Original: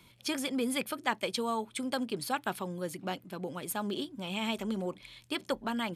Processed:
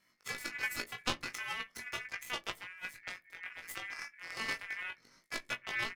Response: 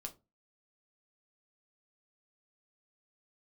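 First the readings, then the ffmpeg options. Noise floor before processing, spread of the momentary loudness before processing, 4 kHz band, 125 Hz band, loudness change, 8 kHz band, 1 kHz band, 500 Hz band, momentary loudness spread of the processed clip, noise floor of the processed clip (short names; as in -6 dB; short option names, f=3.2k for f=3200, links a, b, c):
-60 dBFS, 7 LU, -4.0 dB, -11.5 dB, -5.0 dB, -5.5 dB, -9.0 dB, -15.0 dB, 8 LU, -71 dBFS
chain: -filter_complex "[0:a]asplit=2[a][b];[b]alimiter=limit=-23.5dB:level=0:latency=1:release=231,volume=-1.5dB[c];[a][c]amix=inputs=2:normalize=0,flanger=delay=20:depth=3.4:speed=0.38,aeval=exprs='0.158*(cos(1*acos(clip(val(0)/0.158,-1,1)))-cos(1*PI/2))+0.0447*(cos(3*acos(clip(val(0)/0.158,-1,1)))-cos(3*PI/2))+0.00501*(cos(8*acos(clip(val(0)/0.158,-1,1)))-cos(8*PI/2))':c=same,aeval=exprs='val(0)*sin(2*PI*2000*n/s)':c=same,asplit=2[d][e];[e]adelay=17,volume=-8dB[f];[d][f]amix=inputs=2:normalize=0,asplit=2[g][h];[1:a]atrim=start_sample=2205,lowshelf=f=420:g=8[i];[h][i]afir=irnorm=-1:irlink=0,volume=-9dB[j];[g][j]amix=inputs=2:normalize=0,volume=1.5dB"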